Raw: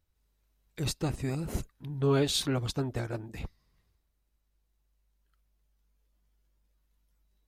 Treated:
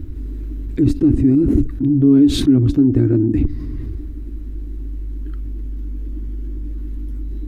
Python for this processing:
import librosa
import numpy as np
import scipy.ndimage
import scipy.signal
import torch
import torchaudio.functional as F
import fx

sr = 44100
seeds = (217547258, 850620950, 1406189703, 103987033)

y = fx.curve_eq(x, sr, hz=(120.0, 170.0, 290.0, 500.0, 810.0, 1700.0, 5300.0), db=(0, -12, 13, -16, -23, -19, -29))
y = fx.env_flatten(y, sr, amount_pct=70)
y = y * librosa.db_to_amplitude(8.5)